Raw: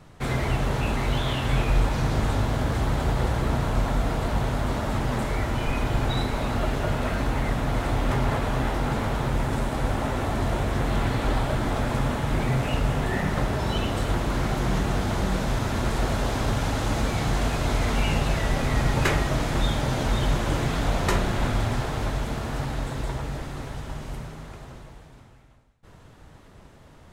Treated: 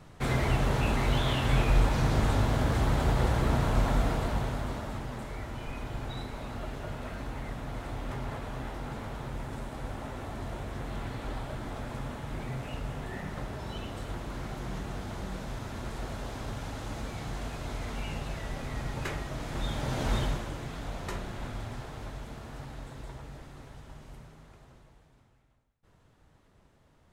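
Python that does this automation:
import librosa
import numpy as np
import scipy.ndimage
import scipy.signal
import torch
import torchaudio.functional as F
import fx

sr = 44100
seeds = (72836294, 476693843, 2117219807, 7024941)

y = fx.gain(x, sr, db=fx.line((4.0, -2.0), (5.14, -12.5), (19.34, -12.5), (20.16, -4.0), (20.53, -13.5)))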